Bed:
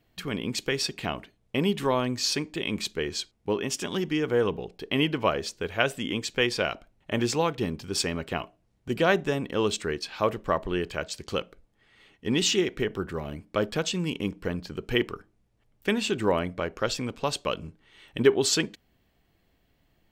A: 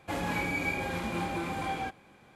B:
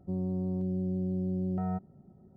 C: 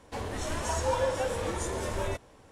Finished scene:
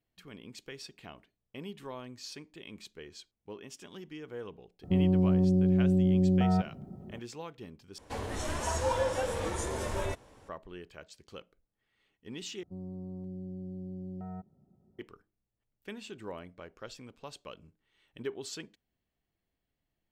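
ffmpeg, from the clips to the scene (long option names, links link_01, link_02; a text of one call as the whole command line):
ffmpeg -i bed.wav -i cue0.wav -i cue1.wav -i cue2.wav -filter_complex "[2:a]asplit=2[link_01][link_02];[0:a]volume=-17.5dB[link_03];[link_01]alimiter=level_in=27.5dB:limit=-1dB:release=50:level=0:latency=1[link_04];[link_03]asplit=3[link_05][link_06][link_07];[link_05]atrim=end=7.984[link_08];[3:a]atrim=end=2.51,asetpts=PTS-STARTPTS,volume=-1.5dB[link_09];[link_06]atrim=start=10.486:end=12.634[link_10];[link_02]atrim=end=2.36,asetpts=PTS-STARTPTS,volume=-9.5dB[link_11];[link_07]atrim=start=14.986[link_12];[link_04]atrim=end=2.36,asetpts=PTS-STARTPTS,volume=-17.5dB,afade=type=in:duration=0.004:curve=hsin,afade=type=out:start_time=2.356:duration=0.004:curve=hsin,adelay=4830[link_13];[link_08][link_09]acrossfade=duration=0.004:curve1=hsin:curve2=hsin[link_14];[link_14][link_10]acrossfade=duration=0.004:curve1=hsin:curve2=hsin[link_15];[link_15][link_11]acrossfade=duration=0.004:curve1=hsin:curve2=hsin[link_16];[link_16][link_12]acrossfade=duration=0.004:curve1=hsin:curve2=hsin[link_17];[link_17][link_13]amix=inputs=2:normalize=0" out.wav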